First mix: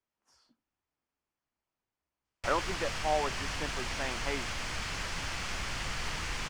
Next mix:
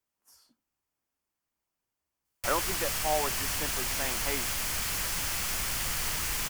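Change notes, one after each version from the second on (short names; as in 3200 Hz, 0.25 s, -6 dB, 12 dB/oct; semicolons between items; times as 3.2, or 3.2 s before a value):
master: remove air absorption 120 m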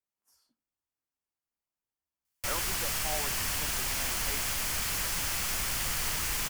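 speech -9.0 dB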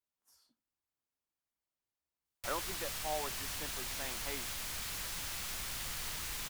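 background -9.5 dB; master: add bell 3800 Hz +6 dB 0.33 oct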